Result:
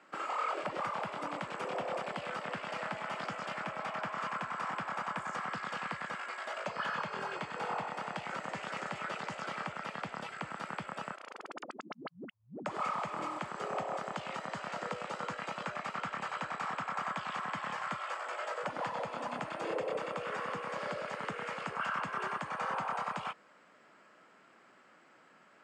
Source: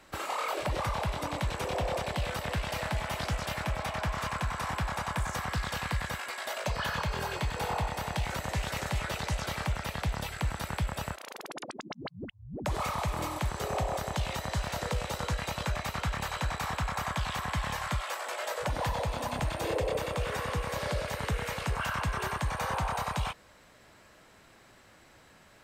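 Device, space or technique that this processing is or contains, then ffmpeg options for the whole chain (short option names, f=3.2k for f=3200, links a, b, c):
television speaker: -filter_complex "[0:a]asettb=1/sr,asplit=3[a][b][c];[a]atrim=end=0.764[d];[b]atrim=start=0.76:end=2.3,asetpts=PTS-STARTPTS,afade=t=in:d=0.004:c=qsin,afade=t=out:st=1.536:d=0.004:c=qsin,equalizer=f=11k:w=1.9:g=5.5[e];[c]atrim=start=2.296[f];[d][e]acrossfade=d=0.004:c1=hsin:c2=qsin[g];[g][f]acrossfade=d=0.004:c1=qsin:c2=hsin,highpass=f=180:w=0.5412,highpass=f=180:w=1.3066,equalizer=f=1.3k:t=q:w=4:g=7,equalizer=f=3.9k:t=q:w=4:g=-10,equalizer=f=5.9k:t=q:w=4:g=-9,lowpass=f=6.9k:w=0.5412,lowpass=f=6.9k:w=1.3066,volume=-4.5dB"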